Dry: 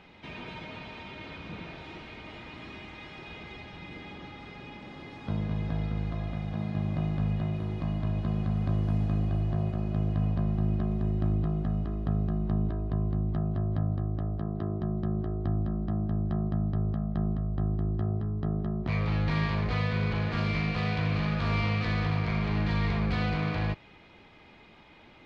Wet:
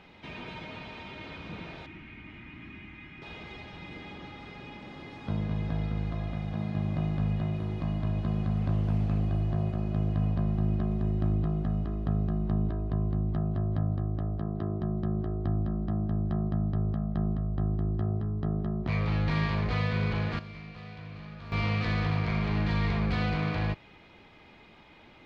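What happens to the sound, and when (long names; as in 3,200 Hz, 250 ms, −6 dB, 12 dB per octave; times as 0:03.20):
0:01.86–0:03.22: drawn EQ curve 300 Hz 0 dB, 500 Hz −16 dB, 2,300 Hz 0 dB, 4,200 Hz −15 dB
0:08.59–0:09.22: highs frequency-modulated by the lows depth 0.17 ms
0:20.04–0:21.87: duck −15 dB, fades 0.35 s logarithmic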